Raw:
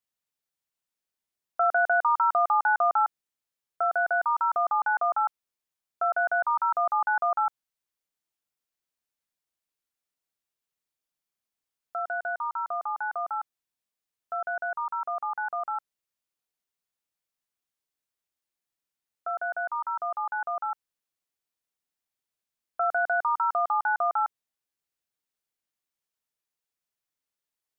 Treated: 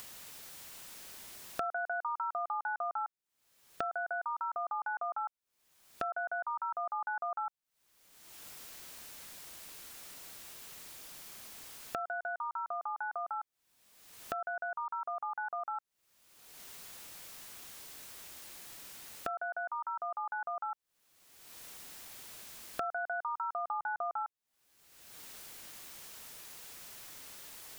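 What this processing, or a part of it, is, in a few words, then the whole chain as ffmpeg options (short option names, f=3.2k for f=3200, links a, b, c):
upward and downward compression: -filter_complex "[0:a]asettb=1/sr,asplit=3[a][b][c];[a]atrim=end=23.664[d];[b]atrim=start=23.66:end=24.23,asetpts=PTS-STARTPTS,afade=t=in:d=0.004:c=qsin,afade=t=out:st=0.566:d=0.004:c=qsin,lowshelf=f=390:g=9.5[e];[c]atrim=start=24.226[f];[d][e]acrossfade=d=0.004:c1=hsin:c2=qsin[g];[g][f]acrossfade=d=0.004:c1=qsin:c2=hsin,acompressor=mode=upward:threshold=-29dB:ratio=2.5,acompressor=threshold=-43dB:ratio=4,volume=5.5dB"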